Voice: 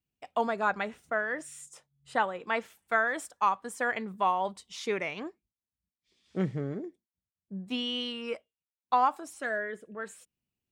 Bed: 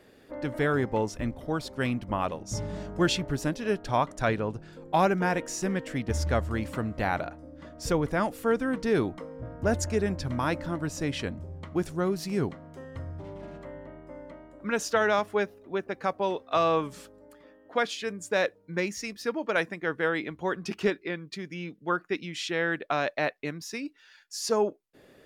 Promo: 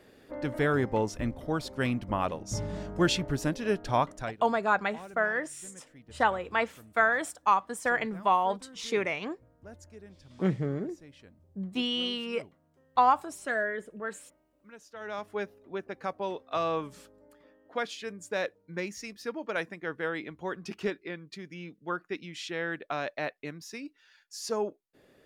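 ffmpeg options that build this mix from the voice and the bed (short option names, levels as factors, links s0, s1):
-filter_complex "[0:a]adelay=4050,volume=1.33[s0];[1:a]volume=6.68,afade=t=out:st=4:d=0.37:silence=0.0794328,afade=t=in:st=14.94:d=0.54:silence=0.141254[s1];[s0][s1]amix=inputs=2:normalize=0"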